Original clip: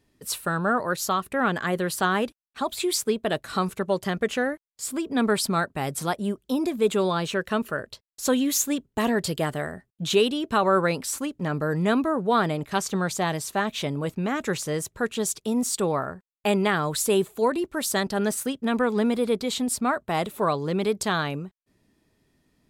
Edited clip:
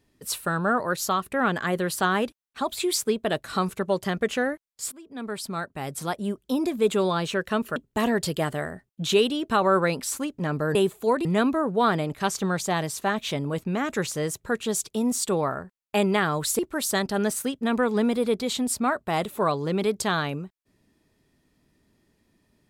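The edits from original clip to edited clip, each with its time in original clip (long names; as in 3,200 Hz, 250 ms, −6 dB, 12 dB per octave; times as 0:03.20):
0:04.92–0:06.52: fade in, from −21.5 dB
0:07.76–0:08.77: remove
0:17.10–0:17.60: move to 0:11.76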